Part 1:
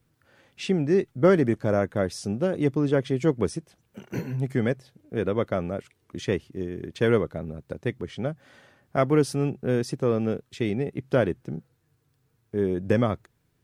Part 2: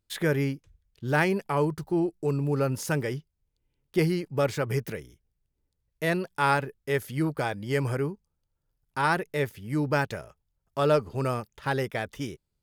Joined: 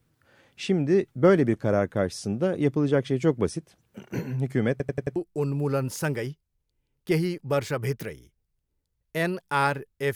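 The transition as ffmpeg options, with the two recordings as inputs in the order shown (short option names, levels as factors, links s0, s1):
-filter_complex "[0:a]apad=whole_dur=10.15,atrim=end=10.15,asplit=5[s0][s1][s2][s3][s4];[s0]atrim=end=4.802[s5];[s1]atrim=start=4.708:end=4.802[s6];[s2]atrim=start=4.708:end=4.802[s7];[s3]atrim=start=4.708:end=4.802[s8];[s4]atrim=start=4.708:end=4.802[s9];[1:a]atrim=start=2.028:end=7.02[s10];[s5][s6]acrossfade=d=0.004:c1=hsin:c2=hsin[s11];[s11][s7]acrossfade=d=0.004:c1=hsin:c2=hsin[s12];[s12][s8]acrossfade=d=0.004:c1=hsin:c2=hsin[s13];[s13][s9]acrossfade=d=0.004:c1=hsin:c2=hsin[s14];[s14][s10]acrossfade=d=0.004:c1=hsin:c2=hsin"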